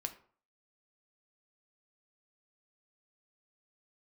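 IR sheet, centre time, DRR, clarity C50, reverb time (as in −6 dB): 8 ms, 6.0 dB, 13.5 dB, 0.45 s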